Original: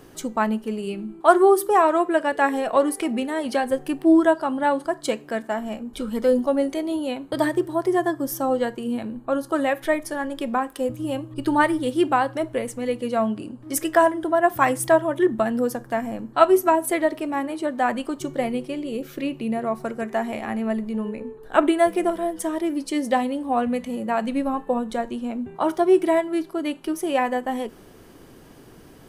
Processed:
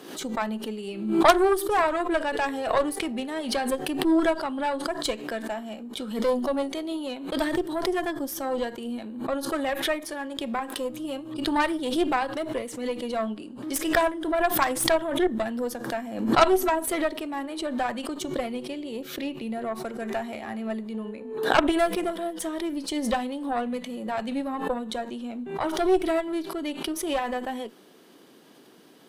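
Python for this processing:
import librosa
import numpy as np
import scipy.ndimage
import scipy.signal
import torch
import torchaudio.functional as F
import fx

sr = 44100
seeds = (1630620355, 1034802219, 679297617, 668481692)

y = scipy.signal.sosfilt(scipy.signal.butter(4, 190.0, 'highpass', fs=sr, output='sos'), x)
y = fx.peak_eq(y, sr, hz=3700.0, db=7.5, octaves=0.75)
y = fx.cheby_harmonics(y, sr, harmonics=(4, 6, 8), levels_db=(-10, -7, -21), full_scale_db=0.5)
y = fx.pre_swell(y, sr, db_per_s=69.0)
y = y * librosa.db_to_amplitude(-5.5)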